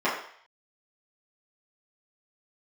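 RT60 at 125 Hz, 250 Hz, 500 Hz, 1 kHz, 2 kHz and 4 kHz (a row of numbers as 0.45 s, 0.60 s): 0.40 s, 0.40 s, 0.55 s, 0.60 s, 0.65 s, 0.65 s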